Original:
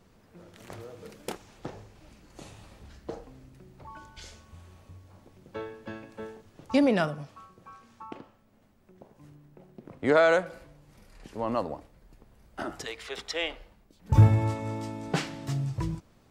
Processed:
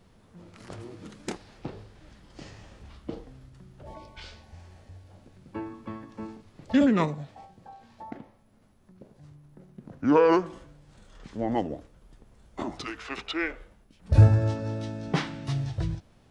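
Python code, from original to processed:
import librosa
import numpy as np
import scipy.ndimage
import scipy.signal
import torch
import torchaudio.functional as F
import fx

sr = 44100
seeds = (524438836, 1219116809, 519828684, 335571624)

y = fx.formant_shift(x, sr, semitones=-6)
y = y * librosa.db_to_amplitude(2.0)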